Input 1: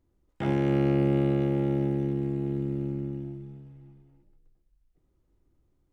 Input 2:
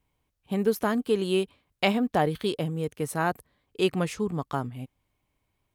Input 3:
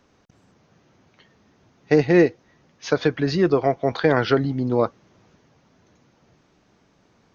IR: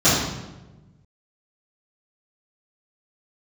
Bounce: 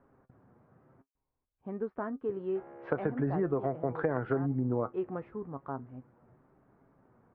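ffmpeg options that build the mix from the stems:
-filter_complex "[0:a]highpass=f=450:w=0.5412,highpass=f=450:w=1.3066,alimiter=level_in=2:limit=0.0631:level=0:latency=1,volume=0.501,adelay=2150,volume=0.422[s0];[1:a]equalizer=f=130:w=1.5:g=-6,adelay=1150,volume=0.596[s1];[2:a]volume=1.06,asplit=3[s2][s3][s4];[s2]atrim=end=1.02,asetpts=PTS-STARTPTS,afade=t=out:st=1.016:d=0.004:c=hsin[s5];[s3]atrim=start=1.02:end=2.29,asetpts=PTS-STARTPTS,volume=0[s6];[s4]atrim=start=2.29,asetpts=PTS-STARTPTS,afade=t=in:d=0.004:c=hsin[s7];[s5][s6][s7]concat=n=3:v=0:a=1[s8];[s0][s1][s8]amix=inputs=3:normalize=0,lowpass=f=1500:w=0.5412,lowpass=f=1500:w=1.3066,flanger=delay=7.2:depth=1.1:regen=60:speed=0.89:shape=triangular,acompressor=threshold=0.0447:ratio=5"

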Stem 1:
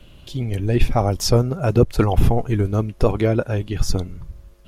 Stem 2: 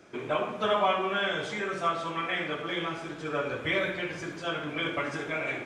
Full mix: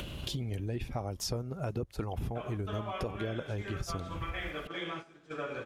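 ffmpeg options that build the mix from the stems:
-filter_complex "[0:a]highpass=43,agate=range=0.447:threshold=0.00631:ratio=16:detection=peak,acompressor=mode=upward:threshold=0.112:ratio=2.5,volume=0.501[s0];[1:a]agate=range=0.178:threshold=0.02:ratio=16:detection=peak,bandreject=f=920:w=19,adelay=2050,volume=0.562[s1];[s0][s1]amix=inputs=2:normalize=0,acompressor=threshold=0.0224:ratio=6"

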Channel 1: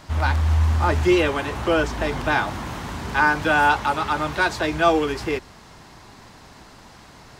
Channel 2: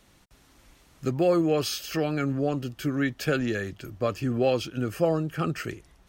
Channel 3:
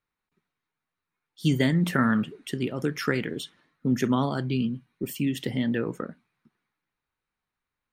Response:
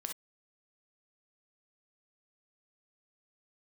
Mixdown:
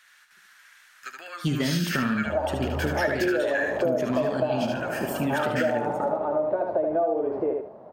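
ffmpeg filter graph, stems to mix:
-filter_complex "[0:a]highpass=200,acompressor=threshold=0.0708:ratio=2,lowpass=f=600:t=q:w=5.6,adelay=2150,volume=0.75,asplit=2[s0][s1];[s1]volume=0.631[s2];[1:a]acompressor=threshold=0.0501:ratio=10,highpass=f=1600:t=q:w=5.2,volume=1.12,asplit=2[s3][s4];[s4]volume=0.562[s5];[2:a]asoftclip=type=hard:threshold=0.188,volume=0.708,asplit=3[s6][s7][s8];[s7]volume=0.447[s9];[s8]volume=0.531[s10];[3:a]atrim=start_sample=2205[s11];[s9][s11]afir=irnorm=-1:irlink=0[s12];[s2][s5][s10]amix=inputs=3:normalize=0,aecho=0:1:75|150|225|300:1|0.25|0.0625|0.0156[s13];[s0][s3][s6][s12][s13]amix=inputs=5:normalize=0,acompressor=threshold=0.0891:ratio=6"

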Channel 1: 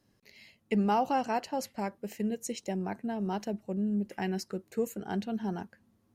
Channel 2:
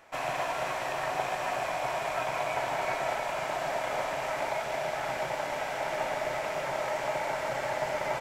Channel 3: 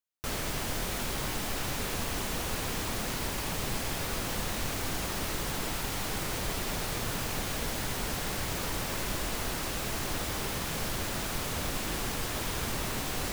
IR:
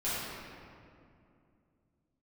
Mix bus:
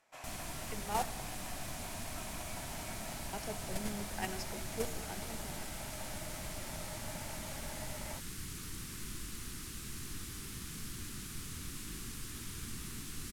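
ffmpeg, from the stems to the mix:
-filter_complex "[0:a]highpass=f=680:p=1,dynaudnorm=f=130:g=21:m=2.66,volume=0.668,asplit=3[s0][s1][s2];[s0]atrim=end=1.02,asetpts=PTS-STARTPTS,afade=t=out:st=1.016:d=0.004:c=hsin[s3];[s1]atrim=start=1.02:end=3.33,asetpts=PTS-STARTPTS,volume=0[s4];[s2]atrim=start=3.33,asetpts=PTS-STARTPTS,afade=t=in:d=0.004:c=hsin[s5];[s3][s4][s5]concat=n=3:v=0:a=1,asplit=2[s6][s7];[s7]volume=0.158[s8];[1:a]crystalizer=i=2.5:c=0,volume=0.398[s9];[2:a]firequalizer=gain_entry='entry(220,0);entry(340,-3);entry(590,-24);entry(1200,-6);entry(9200,4)':delay=0.05:min_phase=1,volume=1,asplit=2[s10][s11];[s11]volume=0.106[s12];[3:a]atrim=start_sample=2205[s13];[s8][s12]amix=inputs=2:normalize=0[s14];[s14][s13]afir=irnorm=-1:irlink=0[s15];[s6][s9][s10][s15]amix=inputs=4:normalize=0,lowpass=12000,agate=range=0.316:threshold=0.0501:ratio=16:detection=peak"

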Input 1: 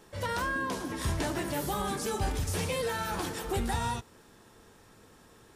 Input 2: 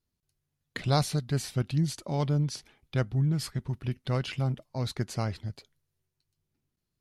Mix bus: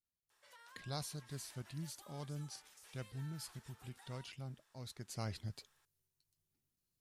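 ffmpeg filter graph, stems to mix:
-filter_complex "[0:a]highpass=1100,acompressor=threshold=0.00355:ratio=2.5,adelay=300,volume=0.188[s0];[1:a]highshelf=f=4800:g=12,volume=0.398,afade=t=in:st=5.06:d=0.31:silence=0.298538[s1];[s0][s1]amix=inputs=2:normalize=0"

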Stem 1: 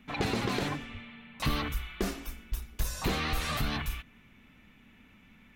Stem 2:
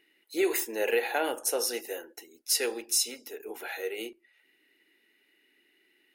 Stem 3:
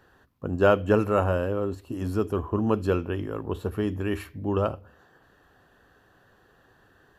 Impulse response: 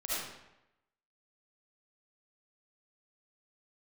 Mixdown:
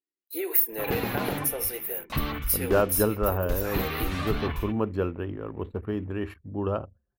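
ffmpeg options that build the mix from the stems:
-filter_complex "[0:a]bandreject=f=232.5:t=h:w=4,bandreject=f=465:t=h:w=4,bandreject=f=697.5:t=h:w=4,bandreject=f=930:t=h:w=4,bandreject=f=1162.5:t=h:w=4,bandreject=f=1395:t=h:w=4,bandreject=f=1627.5:t=h:w=4,bandreject=f=1860:t=h:w=4,bandreject=f=2092.5:t=h:w=4,bandreject=f=2325:t=h:w=4,bandreject=f=2557.5:t=h:w=4,bandreject=f=2790:t=h:w=4,bandreject=f=3022.5:t=h:w=4,bandreject=f=3255:t=h:w=4,bandreject=f=3487.5:t=h:w=4,bandreject=f=3720:t=h:w=4,bandreject=f=3952.5:t=h:w=4,bandreject=f=4185:t=h:w=4,bandreject=f=4417.5:t=h:w=4,bandreject=f=4650:t=h:w=4,bandreject=f=4882.5:t=h:w=4,bandreject=f=5115:t=h:w=4,bandreject=f=5347.5:t=h:w=4,bandreject=f=5580:t=h:w=4,bandreject=f=5812.5:t=h:w=4,bandreject=f=6045:t=h:w=4,bandreject=f=6277.5:t=h:w=4,bandreject=f=6510:t=h:w=4,bandreject=f=6742.5:t=h:w=4,bandreject=f=6975:t=h:w=4,bandreject=f=7207.5:t=h:w=4,bandreject=f=7440:t=h:w=4,bandreject=f=7672.5:t=h:w=4,bandreject=f=7905:t=h:w=4,bandreject=f=8137.5:t=h:w=4,bandreject=f=8370:t=h:w=4,bandreject=f=8602.5:t=h:w=4,adelay=700,volume=1.19[s0];[1:a]highpass=240,acompressor=threshold=0.0251:ratio=2,aexciter=amount=5.6:drive=8.8:freq=10000,volume=1[s1];[2:a]adelay=2100,volume=0.708[s2];[s0][s1][s2]amix=inputs=3:normalize=0,anlmdn=0.0631,equalizer=f=8000:t=o:w=2:g=-9.5"

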